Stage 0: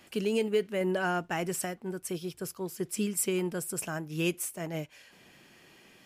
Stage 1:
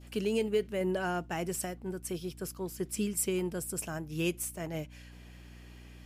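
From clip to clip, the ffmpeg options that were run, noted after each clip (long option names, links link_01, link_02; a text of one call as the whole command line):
ffmpeg -i in.wav -af "adynamicequalizer=threshold=0.00447:dfrequency=1600:dqfactor=0.71:tfrequency=1600:tqfactor=0.71:attack=5:release=100:ratio=0.375:range=2:mode=cutabove:tftype=bell,aeval=exprs='val(0)+0.00398*(sin(2*PI*60*n/s)+sin(2*PI*2*60*n/s)/2+sin(2*PI*3*60*n/s)/3+sin(2*PI*4*60*n/s)/4+sin(2*PI*5*60*n/s)/5)':channel_layout=same,volume=-1.5dB" out.wav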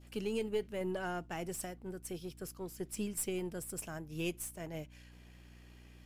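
ffmpeg -i in.wav -af "aeval=exprs='if(lt(val(0),0),0.708*val(0),val(0))':channel_layout=same,volume=-4.5dB" out.wav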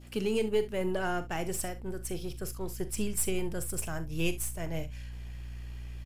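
ffmpeg -i in.wav -filter_complex "[0:a]asubboost=boost=5:cutoff=100,asplit=2[link_01][link_02];[link_02]aecho=0:1:42|68:0.224|0.141[link_03];[link_01][link_03]amix=inputs=2:normalize=0,volume=6.5dB" out.wav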